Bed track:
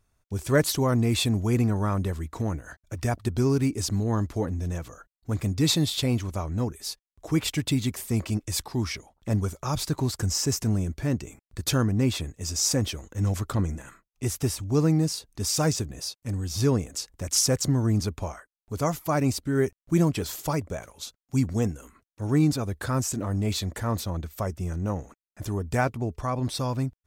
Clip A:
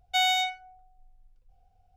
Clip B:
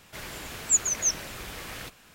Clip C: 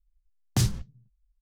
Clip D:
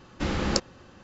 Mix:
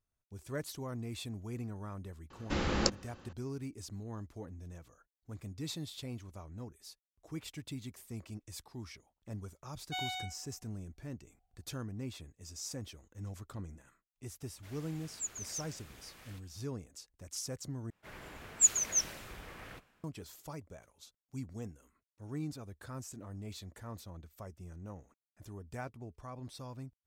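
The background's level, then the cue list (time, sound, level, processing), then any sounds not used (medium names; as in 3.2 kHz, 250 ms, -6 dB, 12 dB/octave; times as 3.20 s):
bed track -18 dB
2.30 s: add D -4 dB + hum notches 50/100/150/200/250/300 Hz
9.78 s: add A -14.5 dB
14.50 s: add B -17 dB
17.90 s: replace with B -7.5 dB + three bands expanded up and down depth 70%
not used: C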